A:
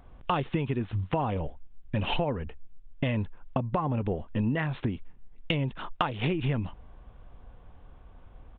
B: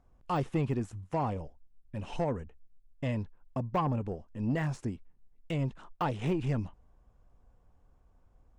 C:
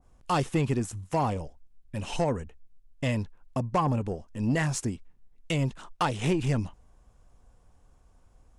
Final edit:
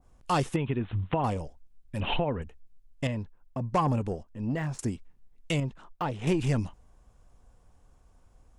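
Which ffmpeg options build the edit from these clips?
-filter_complex "[0:a]asplit=2[a][b];[1:a]asplit=3[c][d][e];[2:a]asplit=6[f][g][h][i][j][k];[f]atrim=end=0.562[l];[a]atrim=start=0.558:end=1.242[m];[g]atrim=start=1.238:end=2.002[n];[b]atrim=start=1.998:end=2.422[o];[h]atrim=start=2.418:end=3.072[p];[c]atrim=start=3.068:end=3.612[q];[i]atrim=start=3.608:end=4.232[r];[d]atrim=start=4.228:end=4.792[s];[j]atrim=start=4.788:end=5.602[t];[e]atrim=start=5.598:end=6.272[u];[k]atrim=start=6.268[v];[l][m]acrossfade=d=0.004:c1=hsin:c2=hsin[w];[w][n]acrossfade=d=0.004:c1=hsin:c2=hsin[x];[x][o]acrossfade=d=0.004:c1=hsin:c2=hsin[y];[y][p]acrossfade=d=0.004:c1=hsin:c2=hsin[z];[z][q]acrossfade=d=0.004:c1=hsin:c2=hsin[aa];[aa][r]acrossfade=d=0.004:c1=hsin:c2=hsin[ab];[ab][s]acrossfade=d=0.004:c1=hsin:c2=hsin[ac];[ac][t]acrossfade=d=0.004:c1=hsin:c2=hsin[ad];[ad][u]acrossfade=d=0.004:c1=hsin:c2=hsin[ae];[ae][v]acrossfade=d=0.004:c1=hsin:c2=hsin"

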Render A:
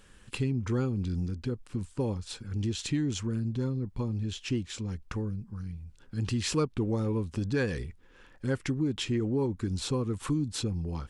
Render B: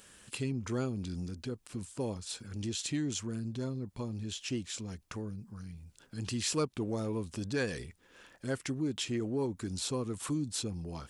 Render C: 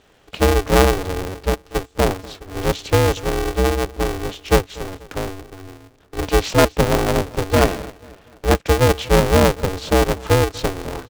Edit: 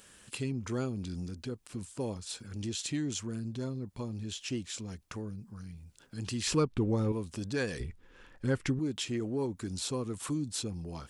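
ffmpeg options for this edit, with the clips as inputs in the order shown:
-filter_complex "[0:a]asplit=2[a][b];[1:a]asplit=3[c][d][e];[c]atrim=end=6.472[f];[a]atrim=start=6.468:end=7.122[g];[d]atrim=start=7.118:end=7.802[h];[b]atrim=start=7.798:end=8.792[i];[e]atrim=start=8.788[j];[f][g]acrossfade=d=0.004:c1=hsin:c2=hsin[k];[k][h]acrossfade=d=0.004:c1=hsin:c2=hsin[l];[l][i]acrossfade=d=0.004:c1=hsin:c2=hsin[m];[m][j]acrossfade=d=0.004:c1=hsin:c2=hsin"

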